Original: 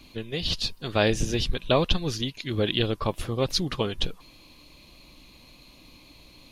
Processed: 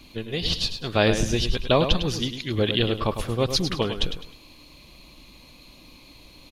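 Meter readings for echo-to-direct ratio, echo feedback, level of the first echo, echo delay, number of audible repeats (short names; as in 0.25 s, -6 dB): -8.5 dB, 31%, -9.0 dB, 0.103 s, 3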